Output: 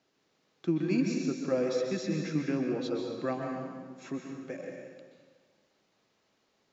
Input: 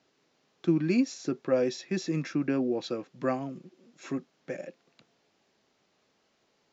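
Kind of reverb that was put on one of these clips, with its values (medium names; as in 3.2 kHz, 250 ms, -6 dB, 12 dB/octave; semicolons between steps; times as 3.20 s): plate-style reverb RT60 1.5 s, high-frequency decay 0.85×, pre-delay 115 ms, DRR 1.5 dB; trim -4 dB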